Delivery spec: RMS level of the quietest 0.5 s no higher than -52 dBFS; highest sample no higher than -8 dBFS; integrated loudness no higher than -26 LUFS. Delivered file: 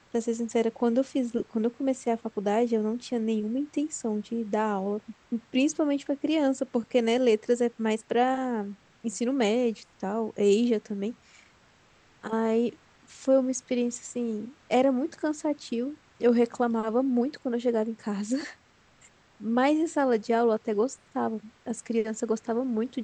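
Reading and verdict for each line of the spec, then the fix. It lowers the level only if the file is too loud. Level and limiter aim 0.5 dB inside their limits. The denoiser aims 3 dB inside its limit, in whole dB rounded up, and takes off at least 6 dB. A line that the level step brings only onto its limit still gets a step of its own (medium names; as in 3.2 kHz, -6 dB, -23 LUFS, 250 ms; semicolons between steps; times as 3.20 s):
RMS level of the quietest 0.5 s -60 dBFS: pass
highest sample -11.0 dBFS: pass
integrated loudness -28.0 LUFS: pass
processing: none needed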